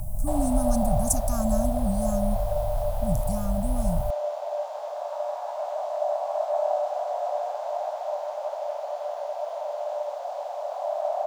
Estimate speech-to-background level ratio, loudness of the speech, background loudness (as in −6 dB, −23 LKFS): 2.5 dB, −28.0 LKFS, −30.5 LKFS